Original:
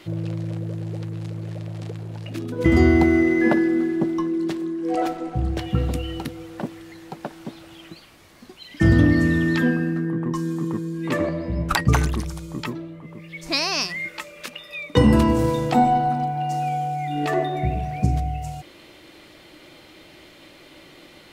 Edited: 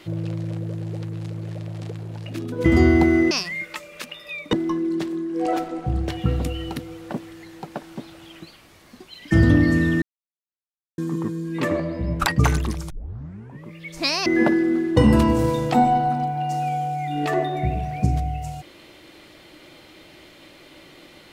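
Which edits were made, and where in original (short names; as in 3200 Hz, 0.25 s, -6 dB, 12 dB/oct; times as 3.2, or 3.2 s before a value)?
3.31–4.02 swap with 13.75–14.97
9.51–10.47 mute
12.39 tape start 0.75 s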